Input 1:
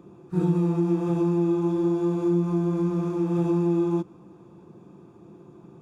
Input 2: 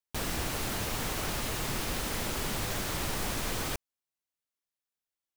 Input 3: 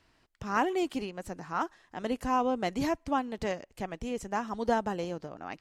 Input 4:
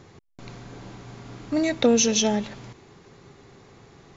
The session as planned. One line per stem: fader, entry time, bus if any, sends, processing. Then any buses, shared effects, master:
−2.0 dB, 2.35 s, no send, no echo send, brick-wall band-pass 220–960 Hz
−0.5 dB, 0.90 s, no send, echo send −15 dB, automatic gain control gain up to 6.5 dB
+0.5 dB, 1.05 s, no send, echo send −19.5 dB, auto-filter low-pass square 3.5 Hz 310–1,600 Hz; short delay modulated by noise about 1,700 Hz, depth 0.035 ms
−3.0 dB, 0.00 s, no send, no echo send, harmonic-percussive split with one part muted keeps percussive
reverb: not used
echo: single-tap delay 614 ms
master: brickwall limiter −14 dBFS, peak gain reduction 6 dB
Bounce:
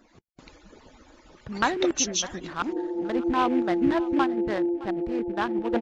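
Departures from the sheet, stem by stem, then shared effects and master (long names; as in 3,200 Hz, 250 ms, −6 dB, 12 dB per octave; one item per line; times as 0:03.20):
stem 2: muted
master: missing brickwall limiter −14 dBFS, peak gain reduction 6 dB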